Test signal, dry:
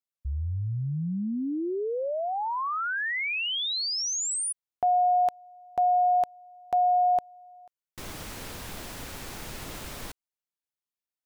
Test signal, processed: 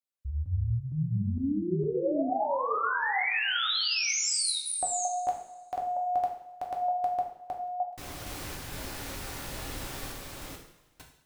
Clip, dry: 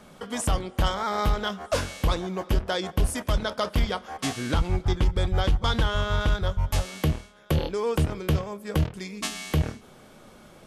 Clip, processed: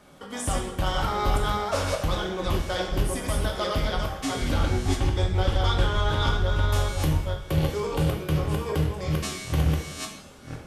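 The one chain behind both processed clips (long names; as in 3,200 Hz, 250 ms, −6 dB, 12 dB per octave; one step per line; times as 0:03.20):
delay that plays each chunk backwards 459 ms, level −1.5 dB
coupled-rooms reverb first 0.63 s, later 1.9 s, from −17 dB, DRR 0 dB
level −4.5 dB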